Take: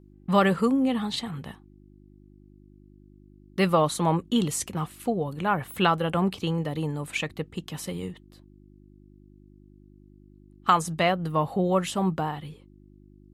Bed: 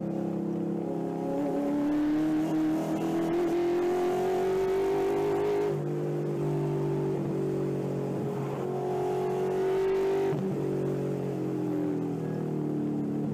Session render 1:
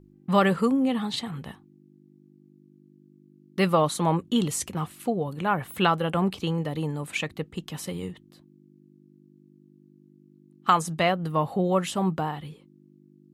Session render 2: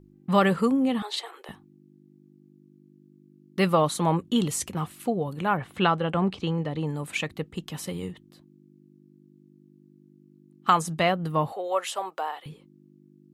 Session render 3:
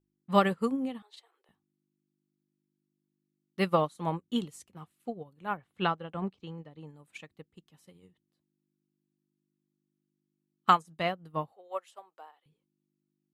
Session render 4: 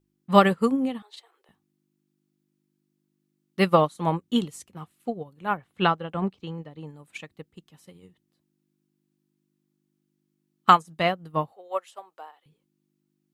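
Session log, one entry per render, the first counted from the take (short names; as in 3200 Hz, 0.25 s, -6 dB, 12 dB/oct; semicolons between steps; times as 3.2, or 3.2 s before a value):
de-hum 50 Hz, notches 2
1.02–1.49 steep high-pass 350 Hz 72 dB/oct; 5.57–6.87 air absorption 83 m; 11.52–12.46 HPF 490 Hz 24 dB/oct
upward expander 2.5:1, over -34 dBFS
gain +7 dB; limiter -2 dBFS, peak gain reduction 1 dB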